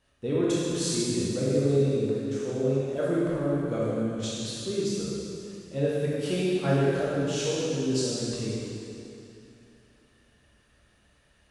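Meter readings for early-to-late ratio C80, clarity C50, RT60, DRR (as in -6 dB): -2.5 dB, -4.5 dB, 2.8 s, -8.0 dB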